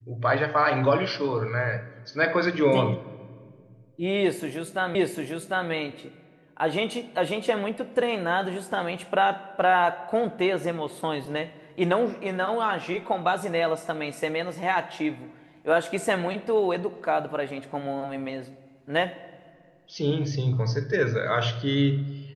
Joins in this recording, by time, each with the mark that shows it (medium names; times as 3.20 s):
4.95 s: repeat of the last 0.75 s